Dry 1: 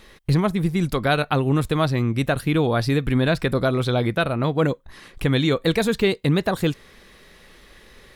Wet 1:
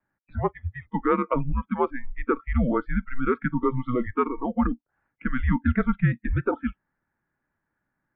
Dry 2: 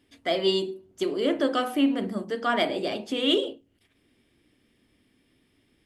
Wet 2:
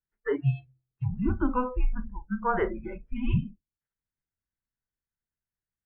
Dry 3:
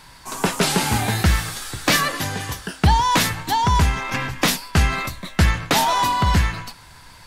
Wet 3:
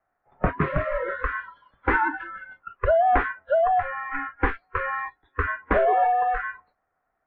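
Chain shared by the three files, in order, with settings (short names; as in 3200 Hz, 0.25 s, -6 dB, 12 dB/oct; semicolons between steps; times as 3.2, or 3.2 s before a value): mistuned SSB -250 Hz 220–2100 Hz; spectral noise reduction 27 dB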